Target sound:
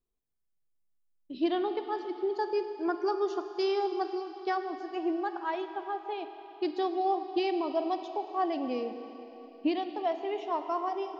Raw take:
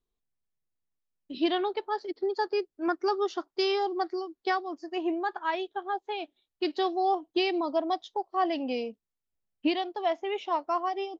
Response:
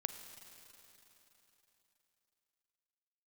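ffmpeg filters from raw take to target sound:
-filter_complex "[0:a]equalizer=f=3.2k:w=0.46:g=-7[a];[1:a]atrim=start_sample=2205[b];[a][b]afir=irnorm=-1:irlink=0"

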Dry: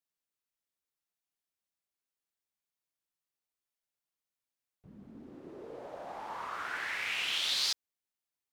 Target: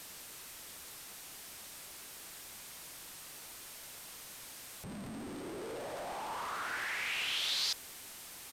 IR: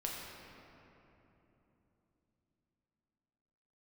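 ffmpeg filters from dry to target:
-af "aeval=exprs='val(0)+0.5*0.0178*sgn(val(0))':c=same,aeval=exprs='val(0)+0.00158*sin(2*PI*8500*n/s)':c=same,aresample=32000,aresample=44100,volume=-4.5dB"

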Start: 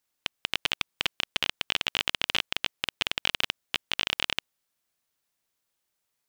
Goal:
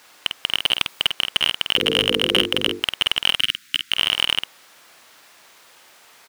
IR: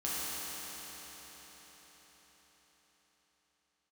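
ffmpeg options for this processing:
-filter_complex "[0:a]asettb=1/sr,asplit=3[a][b][c];[a]atrim=end=0.604[d];[b]atrim=start=0.6:end=1.04,asetpts=PTS-STARTPTS,afade=t=in:d=0.004:c=qsin,afade=t=out:st=0.436:d=0.004:c=qsin,highshelf=f=9.5k:g=6.5[e];[c]atrim=start=1.036[f];[d][e]acrossfade=d=0.004:c1=hsin:c2=qsin[g];[g][f]acrossfade=d=0.004:c1=qsin:c2=hsin,asettb=1/sr,asplit=3[h][i][j];[h]atrim=end=1.764[k];[i]atrim=start=1.76:end=2.79,asetpts=PTS-STARTPTS,afade=t=in:d=0.004:c=qsin,afade=t=out:st=1.026:d=0.004:c=qsin,bandreject=f=50:t=h:w=6,bandreject=f=100:t=h:w=6,bandreject=f=150:t=h:w=6,bandreject=f=200:t=h:w=6,bandreject=f=250:t=h:w=6,bandreject=f=300:t=h:w=6,bandreject=f=350:t=h:w=6,bandreject=f=400:t=h:w=6,bandreject=f=450:t=h:w=6,bandreject=f=500:t=h:w=6[l];[j]atrim=start=2.786[m];[k][l]acrossfade=d=0.004:c1=hsin:c2=qsin[n];[n][m]acrossfade=d=0.004:c1=qsin:c2=hsin,acontrast=55,asplit=2[o][p];[p]highpass=f=720:p=1,volume=37dB,asoftclip=type=tanh:threshold=-0.5dB[q];[o][q]amix=inputs=2:normalize=0,lowpass=f=2.2k:p=1,volume=-6dB,asettb=1/sr,asplit=3[r][s][t];[r]atrim=end=3.364[u];[s]atrim=start=3.36:end=3.92,asetpts=PTS-STARTPTS,afade=t=in:d=0.004:c=qsin,afade=t=out:st=0.556:d=0.004:c=qsin,asuperstop=centerf=640:order=8:qfactor=0.58[v];[t]atrim=start=3.916[w];[u][v]acrossfade=d=0.004:c1=hsin:c2=qsin[x];[x][w]acrossfade=d=0.004:c1=qsin:c2=hsin,asplit=2[y][z];[z]adelay=49,volume=-7dB[aa];[y][aa]amix=inputs=2:normalize=0,volume=1dB"

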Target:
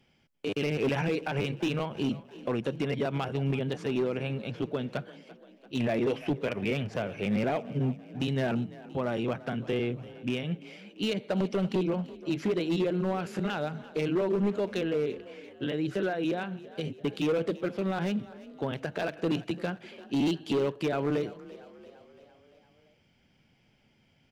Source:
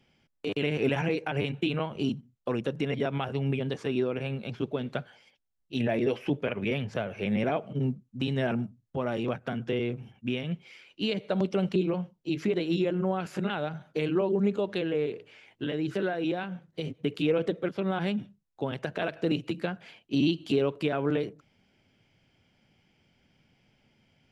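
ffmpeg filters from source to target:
-filter_complex "[0:a]asoftclip=type=hard:threshold=-22.5dB,asplit=2[a][b];[b]asplit=5[c][d][e][f][g];[c]adelay=341,afreqshift=32,volume=-18.5dB[h];[d]adelay=682,afreqshift=64,volume=-23.2dB[i];[e]adelay=1023,afreqshift=96,volume=-28dB[j];[f]adelay=1364,afreqshift=128,volume=-32.7dB[k];[g]adelay=1705,afreqshift=160,volume=-37.4dB[l];[h][i][j][k][l]amix=inputs=5:normalize=0[m];[a][m]amix=inputs=2:normalize=0"

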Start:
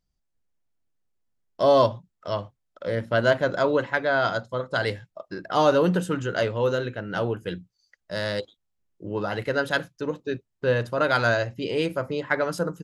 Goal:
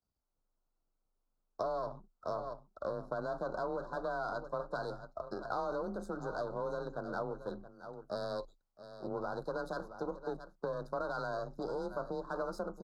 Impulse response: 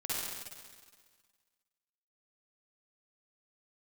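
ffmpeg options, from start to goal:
-filter_complex "[0:a]aeval=exprs='if(lt(val(0),0),0.251*val(0),val(0))':c=same,aecho=1:1:672:0.119,alimiter=limit=-17.5dB:level=0:latency=1:release=16,asuperstop=centerf=2400:order=12:qfactor=0.96,afreqshift=24,acompressor=threshold=-34dB:ratio=6,asplit=2[a][b];[b]highpass=f=720:p=1,volume=14dB,asoftclip=type=tanh:threshold=-1dB[c];[a][c]amix=inputs=2:normalize=0,lowpass=f=1.3k:p=1,volume=-6dB,volume=-4dB"

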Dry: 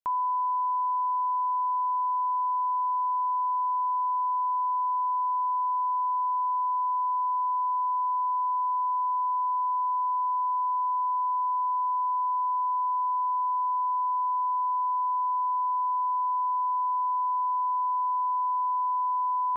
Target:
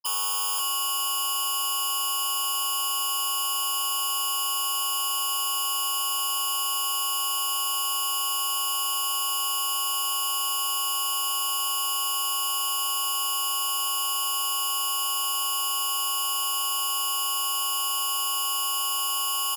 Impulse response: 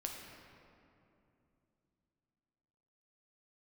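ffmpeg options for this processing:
-af "aeval=exprs='(mod(25.1*val(0)+1,2)-1)/25.1':c=same,afftfilt=real='re*gte(hypot(re,im),0.0178)':imag='im*gte(hypot(re,im),0.0178)':win_size=1024:overlap=0.75,highpass=1k,aecho=1:1:529:0.266,afftfilt=real='re*lt(hypot(re,im),0.0398)':imag='im*lt(hypot(re,im),0.0398)':win_size=1024:overlap=0.75,aeval=exprs='0.0251*sin(PI/2*7.08*val(0)/0.0251)':c=same,volume=8dB"

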